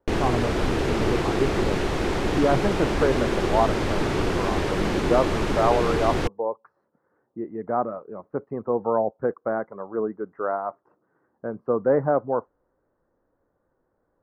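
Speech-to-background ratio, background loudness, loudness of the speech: -1.5 dB, -25.5 LUFS, -27.0 LUFS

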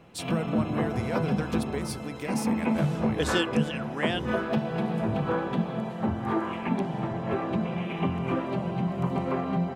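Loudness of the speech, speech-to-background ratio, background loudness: -34.0 LUFS, -5.0 dB, -29.0 LUFS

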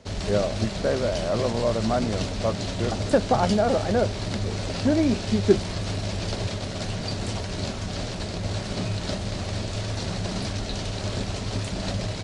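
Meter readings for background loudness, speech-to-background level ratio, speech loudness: -30.0 LUFS, 4.5 dB, -25.5 LUFS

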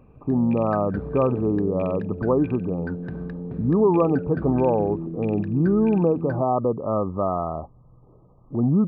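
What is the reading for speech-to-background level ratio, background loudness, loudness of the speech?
10.0 dB, -33.0 LUFS, -23.0 LUFS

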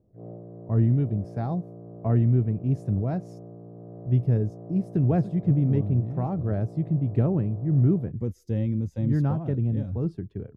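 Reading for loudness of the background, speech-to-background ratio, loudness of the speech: -43.0 LUFS, 17.5 dB, -25.5 LUFS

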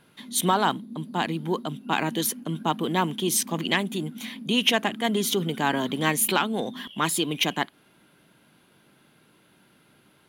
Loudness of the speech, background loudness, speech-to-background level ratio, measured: -25.5 LUFS, -41.5 LUFS, 16.0 dB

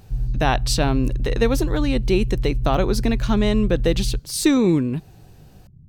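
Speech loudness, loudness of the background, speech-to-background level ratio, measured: -21.5 LUFS, -27.0 LUFS, 5.5 dB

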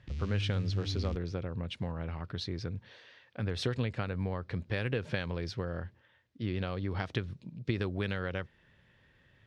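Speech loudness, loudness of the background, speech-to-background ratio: -36.0 LUFS, -37.5 LUFS, 1.5 dB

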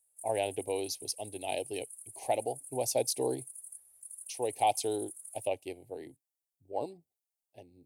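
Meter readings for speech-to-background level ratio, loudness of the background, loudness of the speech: 10.5 dB, -45.5 LUFS, -35.0 LUFS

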